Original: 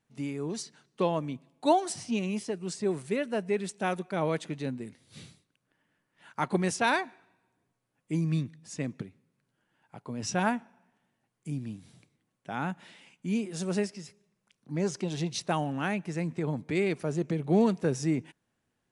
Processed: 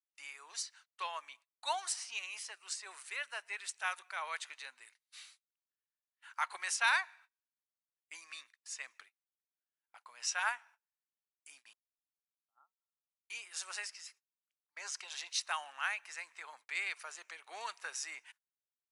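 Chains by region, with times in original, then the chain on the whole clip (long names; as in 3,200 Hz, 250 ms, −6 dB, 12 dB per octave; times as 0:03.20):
0:11.73–0:13.30: parametric band 900 Hz −14 dB 2.1 octaves + downward compressor 2.5 to 1, threshold −47 dBFS + linear-phase brick-wall low-pass 1,400 Hz
whole clip: high-pass filter 1,100 Hz 24 dB per octave; noise gate −60 dBFS, range −28 dB; notch filter 3,400 Hz, Q 21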